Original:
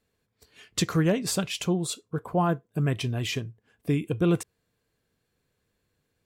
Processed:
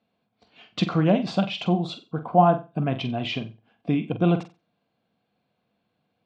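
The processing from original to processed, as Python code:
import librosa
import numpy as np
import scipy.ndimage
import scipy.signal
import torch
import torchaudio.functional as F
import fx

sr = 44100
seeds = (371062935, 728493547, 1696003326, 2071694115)

y = fx.cabinet(x, sr, low_hz=160.0, low_slope=12, high_hz=3800.0, hz=(210.0, 410.0, 720.0, 1800.0), db=(7, -8, 10, -10))
y = fx.room_flutter(y, sr, wall_m=7.8, rt60_s=0.28)
y = y * librosa.db_to_amplitude(3.0)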